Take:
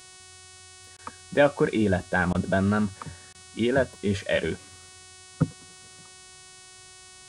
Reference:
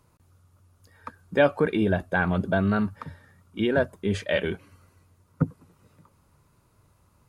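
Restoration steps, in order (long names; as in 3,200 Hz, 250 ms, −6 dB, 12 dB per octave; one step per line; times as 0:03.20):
hum removal 371.2 Hz, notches 27
repair the gap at 0:00.97/0:02.33/0:03.33, 15 ms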